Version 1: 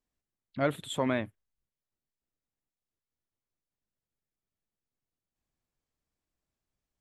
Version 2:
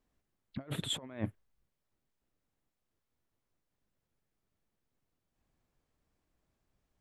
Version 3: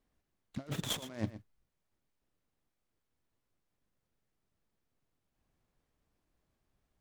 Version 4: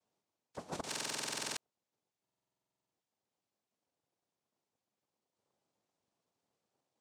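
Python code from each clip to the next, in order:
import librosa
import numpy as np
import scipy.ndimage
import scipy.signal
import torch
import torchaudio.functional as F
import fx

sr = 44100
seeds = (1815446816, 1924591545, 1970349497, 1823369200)

y1 = fx.high_shelf(x, sr, hz=2700.0, db=-9.0)
y1 = fx.over_compress(y1, sr, threshold_db=-38.0, ratio=-0.5)
y1 = y1 * 10.0 ** (1.0 / 20.0)
y2 = y1 + 10.0 ** (-14.0 / 20.0) * np.pad(y1, (int(119 * sr / 1000.0), 0))[:len(y1)]
y2 = fx.noise_mod_delay(y2, sr, seeds[0], noise_hz=3200.0, depth_ms=0.033)
y3 = fx.noise_vocoder(y2, sr, seeds[1], bands=2)
y3 = fx.buffer_glitch(y3, sr, at_s=(0.87, 2.23), block=2048, repeats=14)
y3 = y3 * 10.0 ** (-3.0 / 20.0)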